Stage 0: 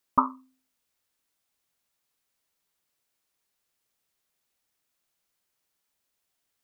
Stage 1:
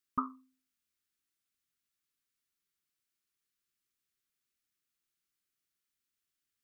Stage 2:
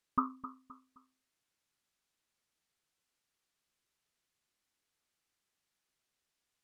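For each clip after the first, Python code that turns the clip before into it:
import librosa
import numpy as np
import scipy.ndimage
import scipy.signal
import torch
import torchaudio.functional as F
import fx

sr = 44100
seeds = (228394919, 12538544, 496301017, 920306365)

y1 = fx.band_shelf(x, sr, hz=690.0, db=-15.0, octaves=1.2)
y1 = F.gain(torch.from_numpy(y1), -8.0).numpy()
y2 = fx.echo_feedback(y1, sr, ms=261, feedback_pct=35, wet_db=-14)
y2 = np.interp(np.arange(len(y2)), np.arange(len(y2))[::2], y2[::2])
y2 = F.gain(torch.from_numpy(y2), 2.0).numpy()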